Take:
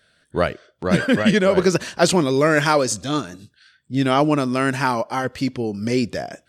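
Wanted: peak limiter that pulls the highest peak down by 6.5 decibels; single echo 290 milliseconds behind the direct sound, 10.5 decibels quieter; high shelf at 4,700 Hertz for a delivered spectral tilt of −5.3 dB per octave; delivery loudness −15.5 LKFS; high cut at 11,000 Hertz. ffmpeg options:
ffmpeg -i in.wav -af "lowpass=11000,highshelf=frequency=4700:gain=-3,alimiter=limit=-10.5dB:level=0:latency=1,aecho=1:1:290:0.299,volume=6.5dB" out.wav

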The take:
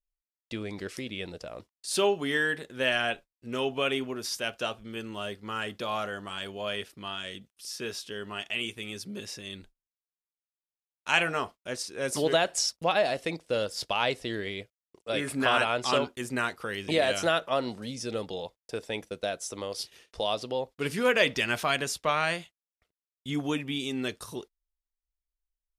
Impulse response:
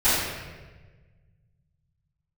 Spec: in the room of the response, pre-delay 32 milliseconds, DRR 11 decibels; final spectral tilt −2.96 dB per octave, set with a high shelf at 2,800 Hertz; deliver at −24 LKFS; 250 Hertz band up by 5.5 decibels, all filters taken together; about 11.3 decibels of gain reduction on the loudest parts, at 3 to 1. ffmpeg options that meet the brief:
-filter_complex "[0:a]equalizer=frequency=250:width_type=o:gain=6.5,highshelf=frequency=2800:gain=6.5,acompressor=threshold=-33dB:ratio=3,asplit=2[link_01][link_02];[1:a]atrim=start_sample=2205,adelay=32[link_03];[link_02][link_03]afir=irnorm=-1:irlink=0,volume=-29dB[link_04];[link_01][link_04]amix=inputs=2:normalize=0,volume=11dB"

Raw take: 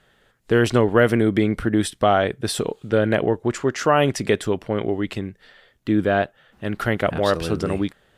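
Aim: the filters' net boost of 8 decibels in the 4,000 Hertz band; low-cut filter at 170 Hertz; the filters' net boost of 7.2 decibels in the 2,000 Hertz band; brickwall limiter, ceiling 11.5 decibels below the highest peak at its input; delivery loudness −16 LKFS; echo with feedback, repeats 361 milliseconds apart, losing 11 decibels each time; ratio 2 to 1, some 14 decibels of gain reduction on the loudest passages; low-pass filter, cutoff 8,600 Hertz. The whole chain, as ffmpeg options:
ffmpeg -i in.wav -af "highpass=170,lowpass=8600,equalizer=frequency=2000:width_type=o:gain=8,equalizer=frequency=4000:width_type=o:gain=7.5,acompressor=threshold=-37dB:ratio=2,alimiter=limit=-22dB:level=0:latency=1,aecho=1:1:361|722|1083:0.282|0.0789|0.0221,volume=19dB" out.wav

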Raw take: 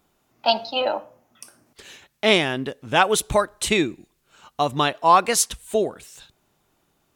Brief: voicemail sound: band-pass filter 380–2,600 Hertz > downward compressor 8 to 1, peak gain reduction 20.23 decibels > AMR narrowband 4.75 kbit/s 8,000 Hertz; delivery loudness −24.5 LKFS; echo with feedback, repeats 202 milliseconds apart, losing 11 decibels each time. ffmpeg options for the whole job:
ffmpeg -i in.wav -af "highpass=380,lowpass=2600,aecho=1:1:202|404|606:0.282|0.0789|0.0221,acompressor=threshold=-31dB:ratio=8,volume=14dB" -ar 8000 -c:a libopencore_amrnb -b:a 4750 out.amr

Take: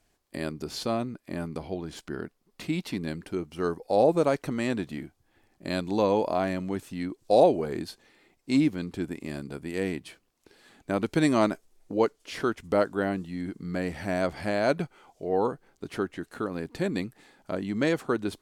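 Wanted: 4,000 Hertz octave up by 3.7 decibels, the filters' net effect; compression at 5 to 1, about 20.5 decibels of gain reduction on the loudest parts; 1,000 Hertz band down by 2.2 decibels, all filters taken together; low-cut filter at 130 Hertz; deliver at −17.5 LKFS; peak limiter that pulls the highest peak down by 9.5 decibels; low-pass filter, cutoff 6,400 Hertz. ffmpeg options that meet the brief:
ffmpeg -i in.wav -af "highpass=130,lowpass=6400,equalizer=frequency=1000:width_type=o:gain=-3.5,equalizer=frequency=4000:width_type=o:gain=5,acompressor=threshold=-39dB:ratio=5,volume=27.5dB,alimiter=limit=-4.5dB:level=0:latency=1" out.wav

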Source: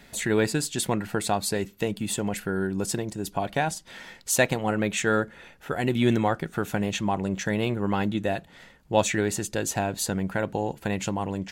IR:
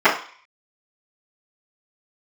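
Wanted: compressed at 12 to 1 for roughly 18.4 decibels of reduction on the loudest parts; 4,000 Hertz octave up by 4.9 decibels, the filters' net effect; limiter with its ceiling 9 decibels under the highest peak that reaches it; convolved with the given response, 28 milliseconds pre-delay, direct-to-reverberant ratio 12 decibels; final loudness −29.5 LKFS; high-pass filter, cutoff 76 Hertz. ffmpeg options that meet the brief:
-filter_complex "[0:a]highpass=76,equalizer=frequency=4000:width_type=o:gain=6,acompressor=threshold=-34dB:ratio=12,alimiter=level_in=5dB:limit=-24dB:level=0:latency=1,volume=-5dB,asplit=2[link_01][link_02];[1:a]atrim=start_sample=2205,adelay=28[link_03];[link_02][link_03]afir=irnorm=-1:irlink=0,volume=-37.5dB[link_04];[link_01][link_04]amix=inputs=2:normalize=0,volume=11dB"

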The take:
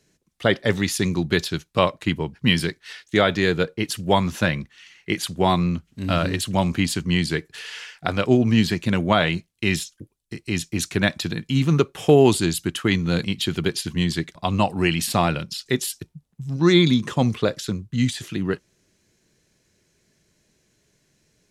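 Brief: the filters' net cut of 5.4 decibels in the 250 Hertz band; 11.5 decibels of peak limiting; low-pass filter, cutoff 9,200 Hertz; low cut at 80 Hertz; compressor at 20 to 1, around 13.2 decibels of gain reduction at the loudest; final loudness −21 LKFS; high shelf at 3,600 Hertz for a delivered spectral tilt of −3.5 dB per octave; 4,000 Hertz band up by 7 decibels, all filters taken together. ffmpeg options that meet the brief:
ffmpeg -i in.wav -af "highpass=80,lowpass=9200,equalizer=frequency=250:width_type=o:gain=-8,highshelf=frequency=3600:gain=4,equalizer=frequency=4000:width_type=o:gain=6.5,acompressor=threshold=-23dB:ratio=20,volume=8.5dB,alimiter=limit=-7.5dB:level=0:latency=1" out.wav

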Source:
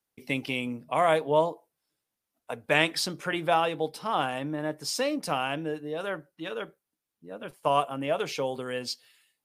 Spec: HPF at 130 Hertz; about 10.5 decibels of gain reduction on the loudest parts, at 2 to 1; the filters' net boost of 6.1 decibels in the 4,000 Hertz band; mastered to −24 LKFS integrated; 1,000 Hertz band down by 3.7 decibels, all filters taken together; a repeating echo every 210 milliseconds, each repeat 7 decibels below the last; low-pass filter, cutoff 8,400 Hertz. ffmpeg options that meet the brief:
ffmpeg -i in.wav -af "highpass=130,lowpass=8400,equalizer=frequency=1000:width_type=o:gain=-5.5,equalizer=frequency=4000:width_type=o:gain=9,acompressor=threshold=-38dB:ratio=2,aecho=1:1:210|420|630|840|1050:0.447|0.201|0.0905|0.0407|0.0183,volume=12dB" out.wav

